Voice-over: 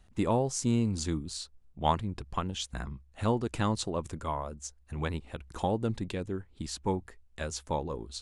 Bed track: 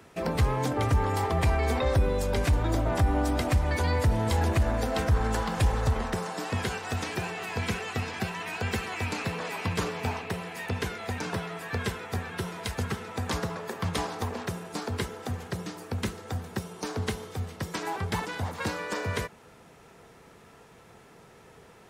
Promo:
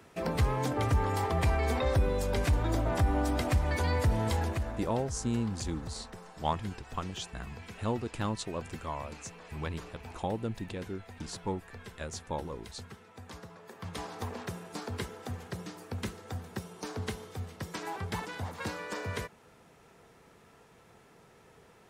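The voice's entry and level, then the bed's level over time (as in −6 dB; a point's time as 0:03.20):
4.60 s, −4.0 dB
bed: 0:04.27 −3 dB
0:05.03 −16.5 dB
0:13.51 −16.5 dB
0:14.25 −5.5 dB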